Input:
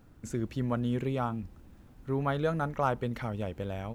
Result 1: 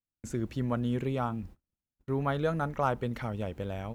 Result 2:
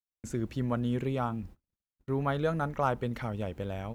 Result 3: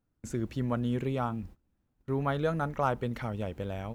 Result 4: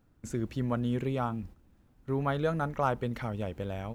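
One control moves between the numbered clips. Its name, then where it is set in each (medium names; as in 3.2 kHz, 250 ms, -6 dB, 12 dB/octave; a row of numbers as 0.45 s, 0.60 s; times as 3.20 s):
gate, range: -43 dB, -56 dB, -22 dB, -9 dB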